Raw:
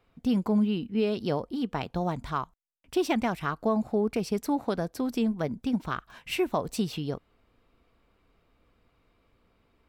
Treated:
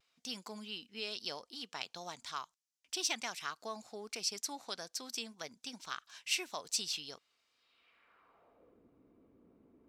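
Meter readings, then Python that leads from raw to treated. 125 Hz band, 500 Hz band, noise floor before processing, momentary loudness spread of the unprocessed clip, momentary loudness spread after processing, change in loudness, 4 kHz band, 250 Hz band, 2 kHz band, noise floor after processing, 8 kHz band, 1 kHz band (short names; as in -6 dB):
-27.0 dB, -18.5 dB, -69 dBFS, 8 LU, 10 LU, -10.5 dB, +2.5 dB, -24.5 dB, -4.5 dB, -83 dBFS, +7.0 dB, -12.0 dB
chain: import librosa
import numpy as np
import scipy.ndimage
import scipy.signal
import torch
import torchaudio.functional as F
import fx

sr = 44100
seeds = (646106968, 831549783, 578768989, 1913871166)

y = fx.filter_sweep_bandpass(x, sr, from_hz=5900.0, to_hz=290.0, start_s=7.52, end_s=8.87, q=1.8)
y = fx.vibrato(y, sr, rate_hz=0.4, depth_cents=17.0)
y = y * 10.0 ** (9.0 / 20.0)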